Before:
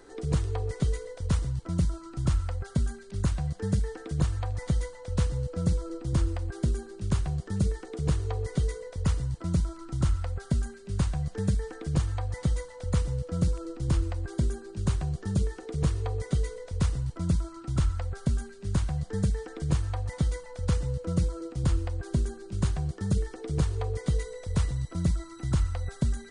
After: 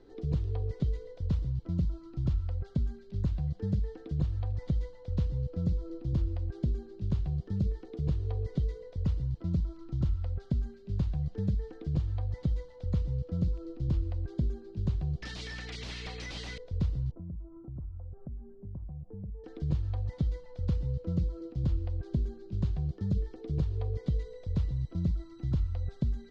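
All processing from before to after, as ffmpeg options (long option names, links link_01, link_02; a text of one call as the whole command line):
ffmpeg -i in.wav -filter_complex "[0:a]asettb=1/sr,asplit=3[link_01][link_02][link_03];[link_01]atrim=end=15.224[link_04];[link_02]atrim=start=15.22:end=16.58,asetpts=PTS-STARTPTS,afade=type=in:duration=0.004:curve=qsin,afade=type=out:start_time=1.356:duration=0.004:curve=qsin,highpass=frequency=2100:width_type=q:width=2.8,aeval=exprs='0.0473*sin(PI/2*8.91*val(0)/0.0473)':channel_layout=same,aeval=exprs='val(0)+0.00891*(sin(2*PI*60*n/s)+sin(2*PI*2*60*n/s)/2+sin(2*PI*3*60*n/s)/3+sin(2*PI*4*60*n/s)/4+sin(2*PI*5*60*n/s)/5)':channel_layout=same[link_05];[link_03]atrim=start=16.576[link_06];[link_04][link_05]acrossfade=duration=0.004:curve1=hsin:curve2=qsin[link_07];[link_07][link_06]acrossfade=duration=0.004:curve1=qsin:curve2=hsin,asettb=1/sr,asplit=3[link_08][link_09][link_10];[link_08]atrim=end=17.114[link_11];[link_09]atrim=start=17.11:end=19.44,asetpts=PTS-STARTPTS,afade=type=in:duration=0.004:curve=qsin,afade=type=out:start_time=2.326:duration=0.004:curve=qsin,lowpass=frequency=1000:width=0.5412,lowpass=frequency=1000:width=1.3066,acompressor=threshold=-41dB:ratio=3:attack=3.2:release=140:knee=1:detection=peak[link_12];[link_10]atrim=start=19.436[link_13];[link_11][link_12]acrossfade=duration=0.004:curve1=hsin:curve2=qsin[link_14];[link_14][link_13]acrossfade=duration=0.004:curve1=qsin:curve2=hsin,lowpass=frequency=4200:width=0.5412,lowpass=frequency=4200:width=1.3066,equalizer=frequency=1500:width_type=o:width=2.7:gain=-14.5,acompressor=threshold=-27dB:ratio=2" out.wav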